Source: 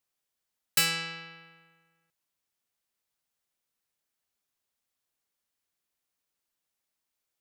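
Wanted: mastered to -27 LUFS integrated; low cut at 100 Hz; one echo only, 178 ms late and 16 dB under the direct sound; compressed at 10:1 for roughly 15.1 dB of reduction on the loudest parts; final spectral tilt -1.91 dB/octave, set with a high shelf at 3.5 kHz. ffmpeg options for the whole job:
-af "highpass=100,highshelf=f=3500:g=-5,acompressor=threshold=0.0126:ratio=10,aecho=1:1:178:0.158,volume=6.68"

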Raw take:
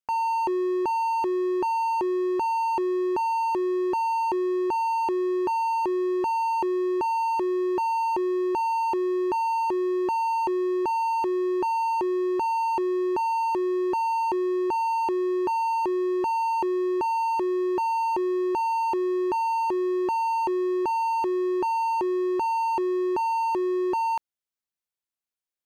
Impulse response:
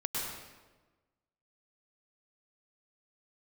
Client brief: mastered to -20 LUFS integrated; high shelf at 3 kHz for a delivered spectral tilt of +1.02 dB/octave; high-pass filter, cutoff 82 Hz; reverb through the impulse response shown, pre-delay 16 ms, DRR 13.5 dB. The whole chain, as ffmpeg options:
-filter_complex "[0:a]highpass=82,highshelf=f=3000:g=-3.5,asplit=2[s0][s1];[1:a]atrim=start_sample=2205,adelay=16[s2];[s1][s2]afir=irnorm=-1:irlink=0,volume=0.119[s3];[s0][s3]amix=inputs=2:normalize=0,volume=2"

